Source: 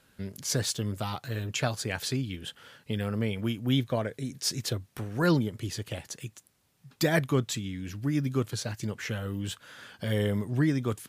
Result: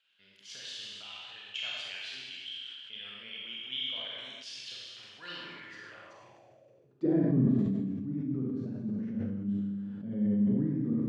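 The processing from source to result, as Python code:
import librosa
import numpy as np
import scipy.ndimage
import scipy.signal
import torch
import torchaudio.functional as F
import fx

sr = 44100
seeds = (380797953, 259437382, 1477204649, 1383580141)

y = fx.air_absorb(x, sr, metres=63.0)
y = fx.rev_schroeder(y, sr, rt60_s=1.6, comb_ms=31, drr_db=-4.5)
y = fx.filter_sweep_bandpass(y, sr, from_hz=3000.0, to_hz=220.0, start_s=5.38, end_s=7.43, q=4.8)
y = fx.bass_treble(y, sr, bass_db=10, treble_db=-8, at=(7.05, 7.59))
y = fx.sustainer(y, sr, db_per_s=23.0)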